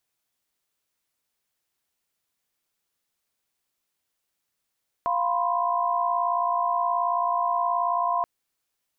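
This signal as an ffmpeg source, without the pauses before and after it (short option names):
-f lavfi -i "aevalsrc='0.0501*(sin(2*PI*698.46*t)+sin(2*PI*987.77*t)+sin(2*PI*1046.5*t))':d=3.18:s=44100"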